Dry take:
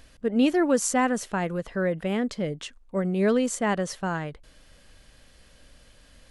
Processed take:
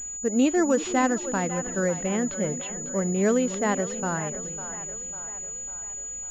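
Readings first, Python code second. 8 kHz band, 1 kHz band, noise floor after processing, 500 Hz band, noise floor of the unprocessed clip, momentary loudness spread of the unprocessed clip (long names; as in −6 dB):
+8.0 dB, +0.5 dB, −36 dBFS, +0.5 dB, −56 dBFS, 10 LU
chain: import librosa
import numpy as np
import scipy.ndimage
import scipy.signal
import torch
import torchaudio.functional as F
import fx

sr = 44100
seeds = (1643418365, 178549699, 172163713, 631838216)

y = fx.echo_split(x, sr, split_hz=470.0, low_ms=328, high_ms=549, feedback_pct=52, wet_db=-11.5)
y = fx.wow_flutter(y, sr, seeds[0], rate_hz=2.1, depth_cents=24.0)
y = fx.pwm(y, sr, carrier_hz=6900.0)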